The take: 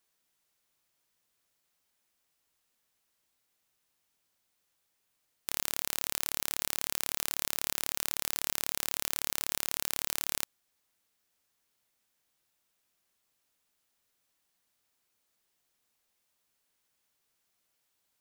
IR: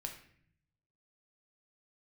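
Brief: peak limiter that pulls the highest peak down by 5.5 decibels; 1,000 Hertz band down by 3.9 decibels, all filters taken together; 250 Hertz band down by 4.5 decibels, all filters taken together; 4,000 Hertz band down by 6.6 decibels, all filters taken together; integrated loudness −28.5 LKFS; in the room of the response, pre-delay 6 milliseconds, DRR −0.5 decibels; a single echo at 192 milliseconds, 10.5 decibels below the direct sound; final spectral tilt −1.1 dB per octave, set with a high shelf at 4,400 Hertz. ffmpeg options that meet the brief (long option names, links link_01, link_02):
-filter_complex "[0:a]equalizer=frequency=250:width_type=o:gain=-6,equalizer=frequency=1000:width_type=o:gain=-4,equalizer=frequency=4000:width_type=o:gain=-4,highshelf=frequency=4400:gain=-7.5,alimiter=limit=-16dB:level=0:latency=1,aecho=1:1:192:0.299,asplit=2[link_01][link_02];[1:a]atrim=start_sample=2205,adelay=6[link_03];[link_02][link_03]afir=irnorm=-1:irlink=0,volume=2.5dB[link_04];[link_01][link_04]amix=inputs=2:normalize=0,volume=12.5dB"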